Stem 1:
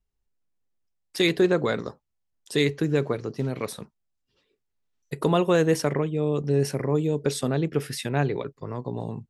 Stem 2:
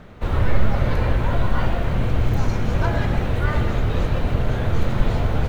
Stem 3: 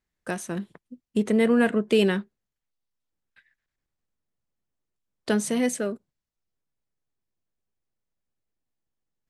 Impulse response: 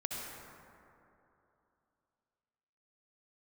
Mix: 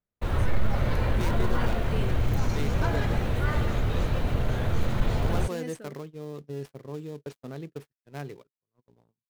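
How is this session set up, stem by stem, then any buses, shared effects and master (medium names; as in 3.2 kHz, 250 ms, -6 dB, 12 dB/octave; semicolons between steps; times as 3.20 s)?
-13.5 dB, 0.00 s, no send, dead-time distortion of 0.13 ms
-5.0 dB, 0.00 s, no send, treble shelf 5.9 kHz +8 dB
-15.5 dB, 0.00 s, no send, none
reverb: none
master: gate -40 dBFS, range -44 dB; saturation -11 dBFS, distortion -24 dB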